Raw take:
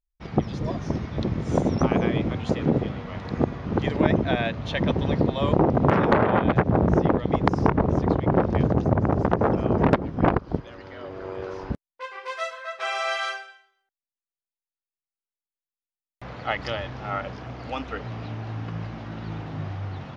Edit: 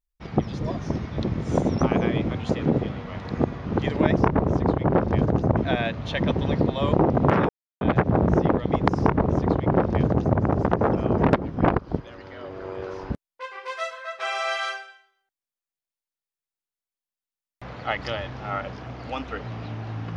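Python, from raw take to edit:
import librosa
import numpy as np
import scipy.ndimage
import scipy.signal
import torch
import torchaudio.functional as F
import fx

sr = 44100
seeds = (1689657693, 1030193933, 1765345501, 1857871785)

y = fx.edit(x, sr, fx.silence(start_s=6.09, length_s=0.32),
    fx.duplicate(start_s=7.59, length_s=1.4, to_s=4.17), tone=tone)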